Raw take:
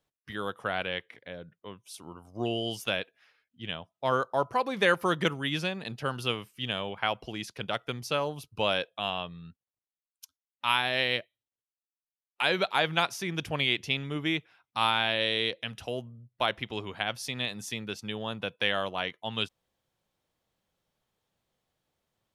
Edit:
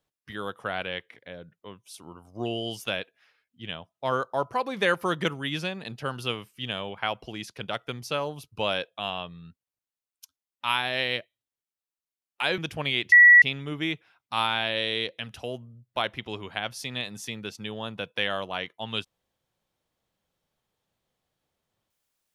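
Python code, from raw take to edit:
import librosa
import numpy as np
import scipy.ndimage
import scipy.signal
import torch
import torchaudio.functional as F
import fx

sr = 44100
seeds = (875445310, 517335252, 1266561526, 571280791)

y = fx.edit(x, sr, fx.cut(start_s=12.58, length_s=0.74),
    fx.insert_tone(at_s=13.86, length_s=0.3, hz=1940.0, db=-9.5), tone=tone)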